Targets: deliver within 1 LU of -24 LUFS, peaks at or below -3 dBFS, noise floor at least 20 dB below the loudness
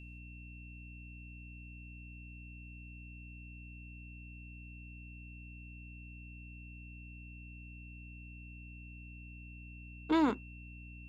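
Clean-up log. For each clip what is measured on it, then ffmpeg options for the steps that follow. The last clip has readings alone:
hum 60 Hz; highest harmonic 300 Hz; hum level -48 dBFS; steady tone 2.7 kHz; tone level -54 dBFS; loudness -43.5 LUFS; peak level -18.5 dBFS; loudness target -24.0 LUFS
-> -af "bandreject=f=60:t=h:w=4,bandreject=f=120:t=h:w=4,bandreject=f=180:t=h:w=4,bandreject=f=240:t=h:w=4,bandreject=f=300:t=h:w=4"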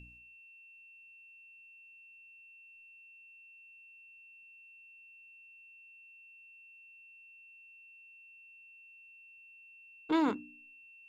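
hum not found; steady tone 2.7 kHz; tone level -54 dBFS
-> -af "bandreject=f=2700:w=30"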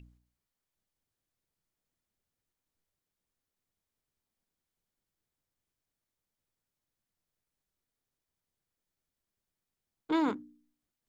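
steady tone not found; loudness -32.5 LUFS; peak level -20.0 dBFS; loudness target -24.0 LUFS
-> -af "volume=2.66"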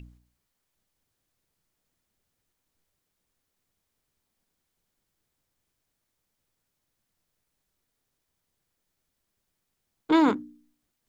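loudness -24.0 LUFS; peak level -11.5 dBFS; noise floor -81 dBFS

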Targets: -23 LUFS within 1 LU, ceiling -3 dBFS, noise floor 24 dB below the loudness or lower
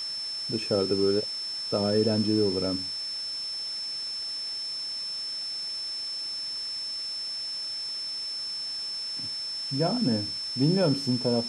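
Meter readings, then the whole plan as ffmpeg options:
steady tone 5.3 kHz; tone level -31 dBFS; noise floor -34 dBFS; noise floor target -52 dBFS; loudness -28.0 LUFS; peak level -12.5 dBFS; loudness target -23.0 LUFS
-> -af "bandreject=f=5300:w=30"
-af "afftdn=nr=18:nf=-34"
-af "volume=1.78"

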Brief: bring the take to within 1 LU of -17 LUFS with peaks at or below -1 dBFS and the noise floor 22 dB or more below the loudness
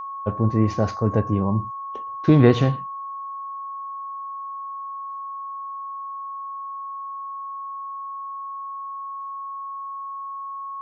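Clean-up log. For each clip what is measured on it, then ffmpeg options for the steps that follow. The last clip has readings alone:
steady tone 1.1 kHz; tone level -30 dBFS; loudness -26.0 LUFS; peak level -1.5 dBFS; loudness target -17.0 LUFS
-> -af "bandreject=f=1100:w=30"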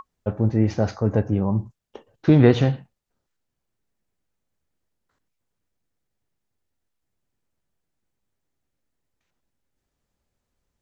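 steady tone not found; loudness -20.5 LUFS; peak level -2.0 dBFS; loudness target -17.0 LUFS
-> -af "volume=1.5,alimiter=limit=0.891:level=0:latency=1"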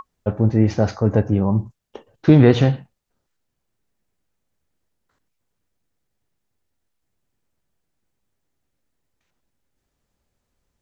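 loudness -17.5 LUFS; peak level -1.0 dBFS; noise floor -76 dBFS

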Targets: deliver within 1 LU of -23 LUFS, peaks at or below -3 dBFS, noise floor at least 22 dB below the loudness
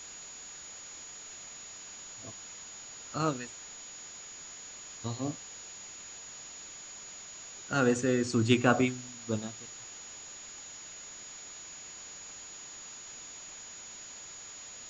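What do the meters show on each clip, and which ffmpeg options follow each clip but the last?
steady tone 6.8 kHz; tone level -45 dBFS; noise floor -47 dBFS; noise floor target -58 dBFS; loudness -36.0 LUFS; peak level -9.0 dBFS; loudness target -23.0 LUFS
-> -af "bandreject=f=6800:w=30"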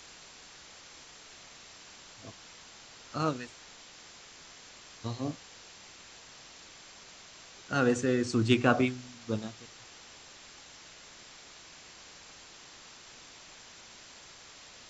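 steady tone not found; noise floor -52 dBFS; noise floor target -53 dBFS
-> -af "afftdn=nr=6:nf=-52"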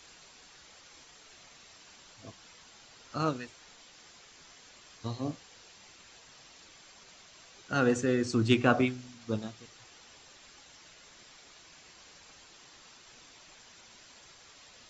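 noise floor -56 dBFS; loudness -30.5 LUFS; peak level -9.0 dBFS; loudness target -23.0 LUFS
-> -af "volume=2.37,alimiter=limit=0.708:level=0:latency=1"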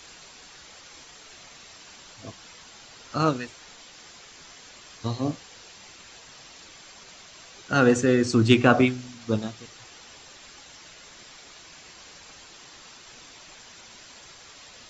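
loudness -23.0 LUFS; peak level -3.0 dBFS; noise floor -49 dBFS

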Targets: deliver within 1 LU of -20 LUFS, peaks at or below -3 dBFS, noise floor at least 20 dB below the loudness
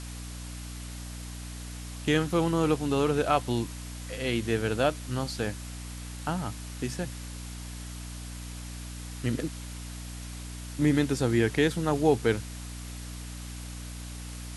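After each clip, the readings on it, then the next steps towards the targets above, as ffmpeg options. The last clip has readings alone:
hum 60 Hz; highest harmonic 300 Hz; hum level -37 dBFS; noise floor -40 dBFS; noise floor target -51 dBFS; loudness -31.0 LUFS; peak level -11.0 dBFS; loudness target -20.0 LUFS
-> -af "bandreject=f=60:t=h:w=6,bandreject=f=120:t=h:w=6,bandreject=f=180:t=h:w=6,bandreject=f=240:t=h:w=6,bandreject=f=300:t=h:w=6"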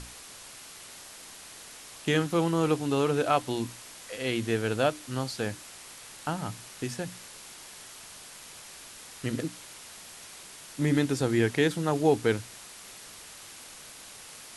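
hum not found; noise floor -47 dBFS; noise floor target -49 dBFS
-> -af "afftdn=nr=6:nf=-47"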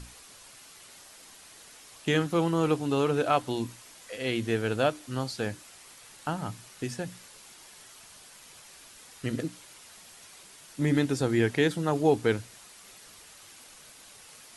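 noise floor -52 dBFS; loudness -29.0 LUFS; peak level -11.0 dBFS; loudness target -20.0 LUFS
-> -af "volume=2.82,alimiter=limit=0.708:level=0:latency=1"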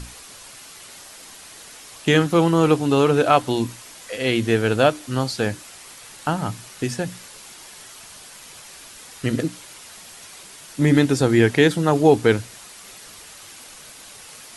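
loudness -20.0 LUFS; peak level -3.0 dBFS; noise floor -43 dBFS

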